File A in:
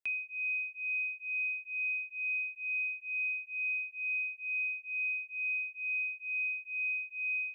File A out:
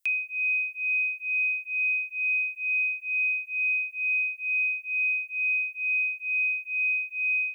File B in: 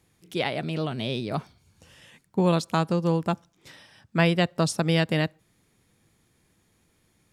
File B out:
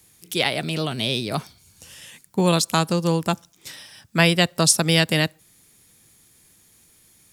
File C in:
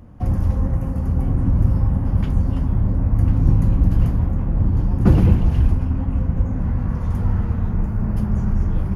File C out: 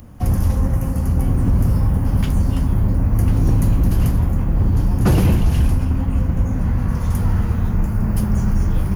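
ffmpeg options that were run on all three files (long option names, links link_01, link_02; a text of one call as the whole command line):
ffmpeg -i in.wav -filter_complex "[0:a]acrossover=split=560[link_01][link_02];[link_01]asoftclip=type=hard:threshold=-13dB[link_03];[link_02]crystalizer=i=4:c=0[link_04];[link_03][link_04]amix=inputs=2:normalize=0,volume=2.5dB" out.wav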